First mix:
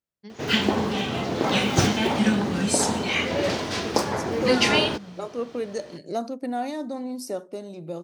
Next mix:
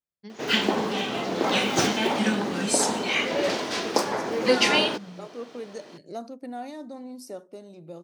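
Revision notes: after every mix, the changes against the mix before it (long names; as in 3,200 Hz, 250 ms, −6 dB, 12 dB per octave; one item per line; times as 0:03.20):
second voice −7.5 dB
background: add high-pass filter 240 Hz 12 dB per octave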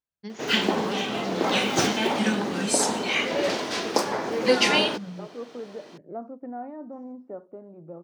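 first voice +5.0 dB
second voice: add inverse Chebyshev low-pass filter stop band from 7,800 Hz, stop band 80 dB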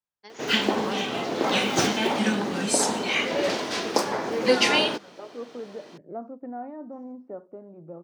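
first voice: add high-pass with resonance 750 Hz, resonance Q 1.8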